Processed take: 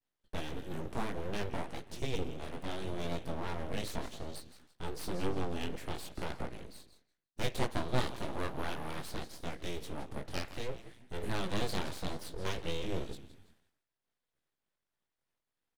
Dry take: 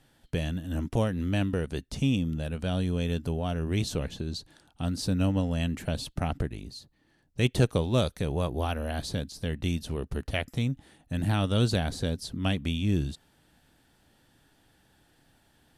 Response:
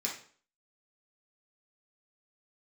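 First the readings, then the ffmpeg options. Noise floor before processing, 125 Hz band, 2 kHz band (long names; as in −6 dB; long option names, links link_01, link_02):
−66 dBFS, −14.0 dB, −5.5 dB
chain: -filter_complex "[0:a]asplit=5[link_01][link_02][link_03][link_04][link_05];[link_02]adelay=166,afreqshift=-38,volume=-14dB[link_06];[link_03]adelay=332,afreqshift=-76,volume=-22dB[link_07];[link_04]adelay=498,afreqshift=-114,volume=-29.9dB[link_08];[link_05]adelay=664,afreqshift=-152,volume=-37.9dB[link_09];[link_01][link_06][link_07][link_08][link_09]amix=inputs=5:normalize=0,agate=range=-33dB:threshold=-51dB:ratio=3:detection=peak,flanger=delay=16:depth=6.5:speed=0.63,asplit=2[link_10][link_11];[1:a]atrim=start_sample=2205,lowpass=2500[link_12];[link_11][link_12]afir=irnorm=-1:irlink=0,volume=-11dB[link_13];[link_10][link_13]amix=inputs=2:normalize=0,aeval=exprs='abs(val(0))':channel_layout=same,volume=-3dB"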